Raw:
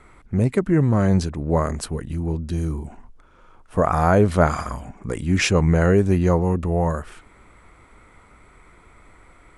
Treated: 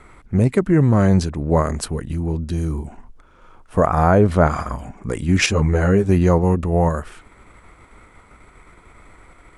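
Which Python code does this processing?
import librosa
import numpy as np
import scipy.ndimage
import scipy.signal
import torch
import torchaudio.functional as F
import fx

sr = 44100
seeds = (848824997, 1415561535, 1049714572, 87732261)

p1 = fx.high_shelf(x, sr, hz=2500.0, db=-7.5, at=(3.86, 4.79))
p2 = fx.level_steps(p1, sr, step_db=10)
p3 = p1 + (p2 * 10.0 ** (-1.0 / 20.0))
p4 = fx.ensemble(p3, sr, at=(5.46, 6.09))
y = p4 * 10.0 ** (-1.0 / 20.0)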